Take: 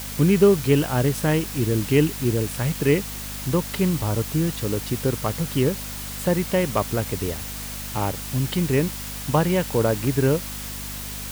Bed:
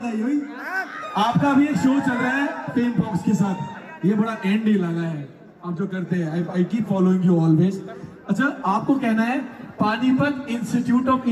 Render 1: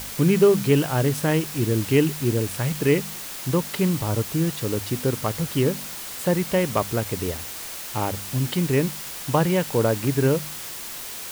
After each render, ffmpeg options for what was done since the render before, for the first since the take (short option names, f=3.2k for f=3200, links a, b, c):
-af "bandreject=f=50:t=h:w=4,bandreject=f=100:t=h:w=4,bandreject=f=150:t=h:w=4,bandreject=f=200:t=h:w=4,bandreject=f=250:t=h:w=4"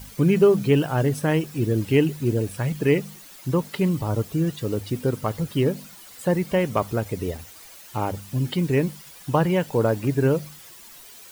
-af "afftdn=nr=13:nf=-35"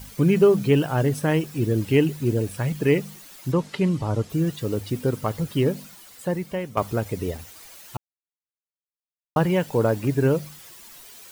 -filter_complex "[0:a]asettb=1/sr,asplit=3[a][b][c];[a]atrim=end=3.524[d];[b]atrim=start=3.52:end=4.3,asetpts=PTS-STARTPTS,afade=t=in:d=0.004:c=qsin,afade=t=out:st=0.776:d=0.004:c=qsin,lowpass=7.7k[e];[c]atrim=start=4.296[f];[d][e]acrossfade=d=0.004:c1=hsin:c2=qsin[g];[g][f]acrossfade=d=0.004:c1=qsin:c2=hsin,asplit=4[h][i][j][k];[h]atrim=end=6.77,asetpts=PTS-STARTPTS,afade=t=out:st=5.78:d=0.99:silence=0.298538[l];[i]atrim=start=6.77:end=7.97,asetpts=PTS-STARTPTS,afade=t=in:d=0.004:c=hsin:silence=0.298538,afade=t=out:st=1.196:d=0.004:c=hsin[m];[j]atrim=start=7.97:end=9.36,asetpts=PTS-STARTPTS,volume=0[n];[k]atrim=start=9.36,asetpts=PTS-STARTPTS,afade=t=in:d=0.004:c=hsin[o];[l][m][n][o]concat=n=4:v=0:a=1"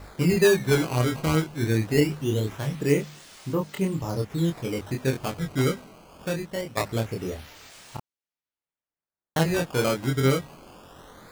-af "acrusher=samples=14:mix=1:aa=0.000001:lfo=1:lforange=22.4:lforate=0.22,flanger=delay=22.5:depth=5.5:speed=0.19"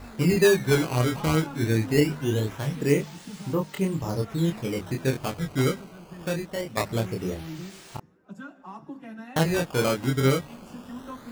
-filter_complex "[1:a]volume=-21dB[a];[0:a][a]amix=inputs=2:normalize=0"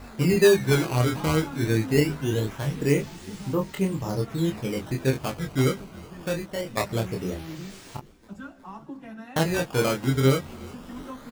-filter_complex "[0:a]asplit=2[a][b];[b]adelay=15,volume=-11dB[c];[a][c]amix=inputs=2:normalize=0,asplit=6[d][e][f][g][h][i];[e]adelay=365,afreqshift=-47,volume=-22.5dB[j];[f]adelay=730,afreqshift=-94,volume=-26.4dB[k];[g]adelay=1095,afreqshift=-141,volume=-30.3dB[l];[h]adelay=1460,afreqshift=-188,volume=-34.1dB[m];[i]adelay=1825,afreqshift=-235,volume=-38dB[n];[d][j][k][l][m][n]amix=inputs=6:normalize=0"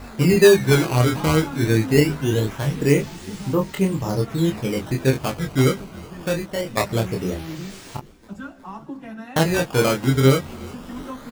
-af "volume=5dB"